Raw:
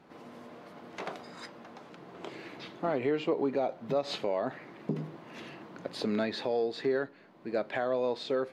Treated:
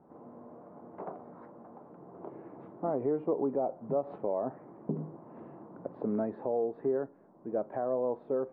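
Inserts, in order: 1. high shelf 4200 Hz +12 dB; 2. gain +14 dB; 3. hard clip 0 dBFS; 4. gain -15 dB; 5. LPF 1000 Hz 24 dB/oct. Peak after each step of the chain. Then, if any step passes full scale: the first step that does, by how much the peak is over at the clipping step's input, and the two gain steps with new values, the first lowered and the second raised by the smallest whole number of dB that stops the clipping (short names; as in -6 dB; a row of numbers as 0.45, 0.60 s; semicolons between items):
-19.5, -5.5, -5.5, -20.5, -20.5 dBFS; no overload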